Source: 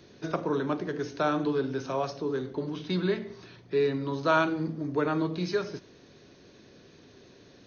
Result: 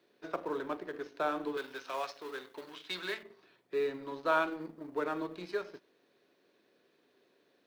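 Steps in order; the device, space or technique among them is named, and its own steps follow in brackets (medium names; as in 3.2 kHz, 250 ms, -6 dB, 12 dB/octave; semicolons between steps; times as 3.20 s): phone line with mismatched companding (band-pass 360–3500 Hz; companding laws mixed up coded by A); 1.57–3.23 s: tilt shelf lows -9.5 dB, about 840 Hz; trim -4 dB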